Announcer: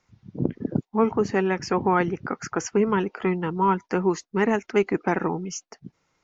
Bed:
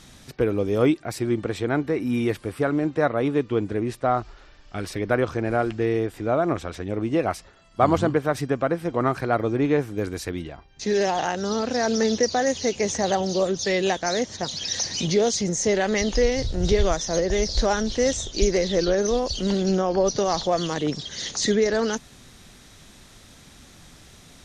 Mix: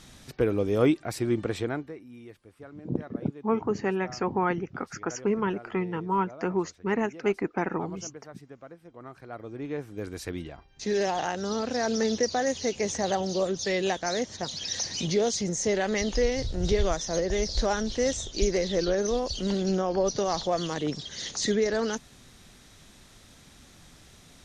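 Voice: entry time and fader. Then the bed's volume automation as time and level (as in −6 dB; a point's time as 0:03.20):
2.50 s, −5.0 dB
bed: 0:01.61 −2.5 dB
0:02.07 −23 dB
0:08.99 −23 dB
0:10.31 −4.5 dB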